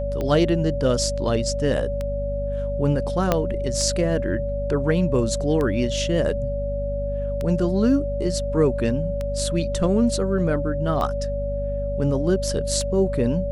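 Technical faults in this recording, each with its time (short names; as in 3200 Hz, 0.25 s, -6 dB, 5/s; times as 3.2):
hum 50 Hz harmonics 5 -28 dBFS
tick 33 1/3 rpm -15 dBFS
tone 570 Hz -26 dBFS
3.32 pop -5 dBFS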